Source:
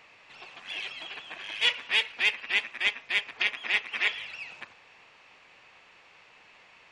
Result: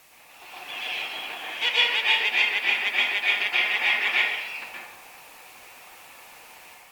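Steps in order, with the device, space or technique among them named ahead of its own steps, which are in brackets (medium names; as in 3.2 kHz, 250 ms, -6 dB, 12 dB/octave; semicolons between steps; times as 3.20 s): filmed off a television (band-pass 200–7100 Hz; peaking EQ 800 Hz +5 dB 0.52 oct; reverberation RT60 0.80 s, pre-delay 114 ms, DRR -6 dB; white noise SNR 25 dB; level rider gain up to 5 dB; trim -5 dB; AAC 96 kbps 48 kHz)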